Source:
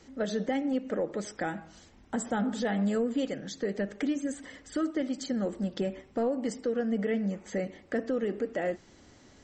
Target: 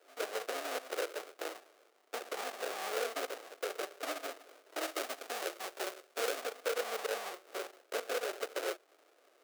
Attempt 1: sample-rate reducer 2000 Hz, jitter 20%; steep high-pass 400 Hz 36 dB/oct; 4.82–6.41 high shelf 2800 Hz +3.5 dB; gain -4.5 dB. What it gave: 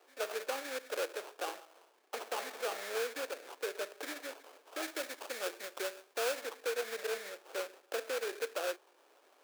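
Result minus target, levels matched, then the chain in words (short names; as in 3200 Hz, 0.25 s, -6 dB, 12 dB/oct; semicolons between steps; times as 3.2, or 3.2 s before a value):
sample-rate reducer: distortion -10 dB
sample-rate reducer 960 Hz, jitter 20%; steep high-pass 400 Hz 36 dB/oct; 4.82–6.41 high shelf 2800 Hz +3.5 dB; gain -4.5 dB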